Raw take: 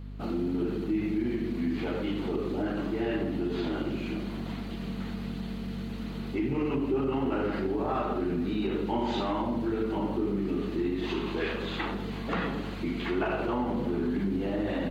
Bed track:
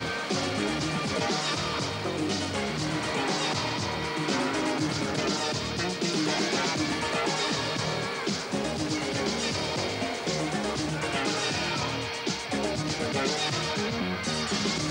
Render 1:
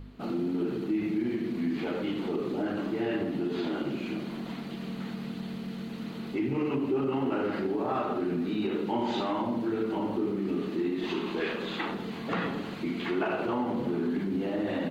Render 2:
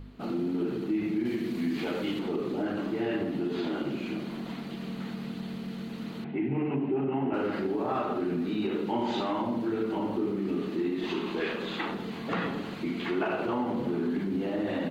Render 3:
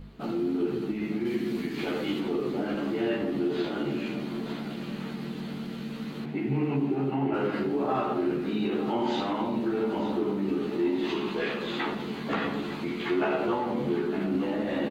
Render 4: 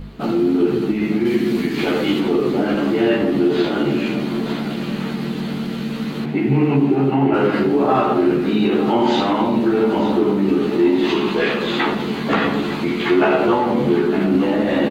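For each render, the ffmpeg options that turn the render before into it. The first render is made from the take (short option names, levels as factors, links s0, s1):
-af "bandreject=f=50:t=h:w=4,bandreject=f=100:t=h:w=4,bandreject=f=150:t=h:w=4,bandreject=f=200:t=h:w=4"
-filter_complex "[0:a]asettb=1/sr,asplit=3[s0][s1][s2];[s0]atrim=end=1.254[s3];[s1]atrim=start=1.25:end=2.19,asetpts=PTS-STARTPTS,afade=t=in:d=0.004:c=qsin,afade=t=out:st=0.936:d=0.004:c=qsin,highshelf=f=3600:g=9[s4];[s2]atrim=start=2.186[s5];[s3][s4]acrossfade=d=0.004:c1=hsin:c2=qsin[s6];[s6][s5]acrossfade=d=0.004:c1=qsin:c2=hsin,asettb=1/sr,asplit=3[s7][s8][s9];[s7]atrim=end=6.244[s10];[s8]atrim=start=6.24:end=7.34,asetpts=PTS-STARTPTS,afade=t=in:d=0.004:c=qsin,afade=t=out:st=1.096:d=0.004:c=qsin,highpass=140,equalizer=f=150:t=q:w=4:g=8,equalizer=f=510:t=q:w=4:g=-6,equalizer=f=750:t=q:w=4:g=5,equalizer=f=1200:t=q:w=4:g=-9,lowpass=f=2600:w=0.5412,lowpass=f=2600:w=1.3066[s11];[s9]atrim=start=7.336[s12];[s10][s11]acrossfade=d=0.004:c1=hsin:c2=qsin[s13];[s13][s12]acrossfade=d=0.004:c1=qsin:c2=hsin"
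-filter_complex "[0:a]asplit=2[s0][s1];[s1]adelay=14,volume=0.708[s2];[s0][s2]amix=inputs=2:normalize=0,aecho=1:1:906|1812|2718|3624|4530:0.251|0.113|0.0509|0.0229|0.0103"
-af "volume=3.76"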